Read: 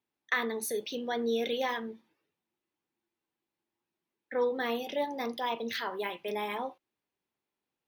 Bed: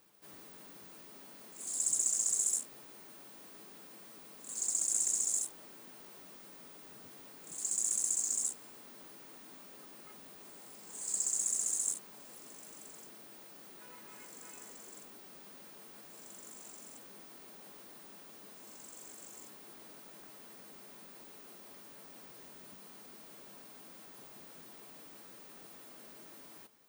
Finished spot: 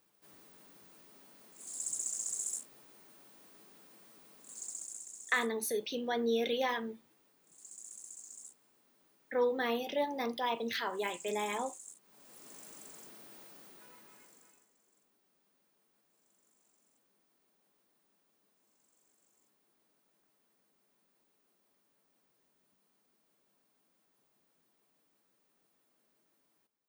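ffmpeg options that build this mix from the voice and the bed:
ffmpeg -i stem1.wav -i stem2.wav -filter_complex "[0:a]adelay=5000,volume=-1dB[link_01];[1:a]volume=10.5dB,afade=type=out:start_time=4.38:duration=0.67:silence=0.281838,afade=type=in:start_time=12.01:duration=0.54:silence=0.149624,afade=type=out:start_time=13.41:duration=1.26:silence=0.0841395[link_02];[link_01][link_02]amix=inputs=2:normalize=0" out.wav

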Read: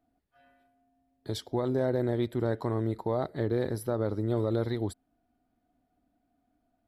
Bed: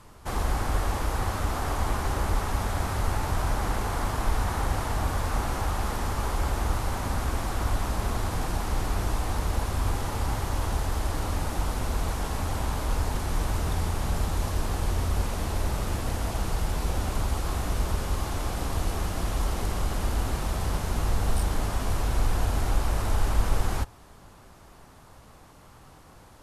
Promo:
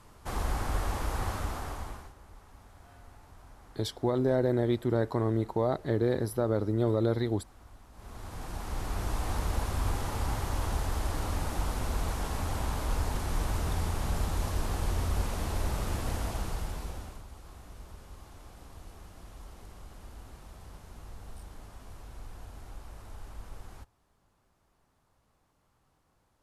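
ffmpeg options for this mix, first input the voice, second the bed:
ffmpeg -i stem1.wav -i stem2.wav -filter_complex "[0:a]adelay=2500,volume=1.5dB[link_01];[1:a]volume=18.5dB,afade=type=out:start_time=1.3:duration=0.83:silence=0.0794328,afade=type=in:start_time=7.92:duration=1.4:silence=0.0707946,afade=type=out:start_time=16.16:duration=1.07:silence=0.141254[link_02];[link_01][link_02]amix=inputs=2:normalize=0" out.wav

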